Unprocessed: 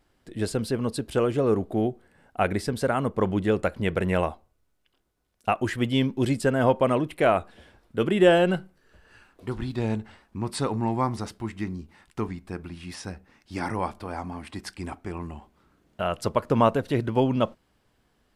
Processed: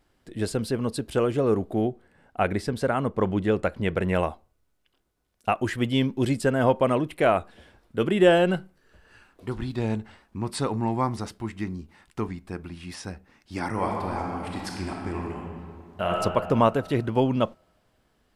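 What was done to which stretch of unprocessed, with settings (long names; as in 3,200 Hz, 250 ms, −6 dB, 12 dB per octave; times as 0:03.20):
0:01.85–0:04.15: high-shelf EQ 6,800 Hz −6.5 dB
0:13.69–0:16.17: thrown reverb, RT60 2.2 s, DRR −1 dB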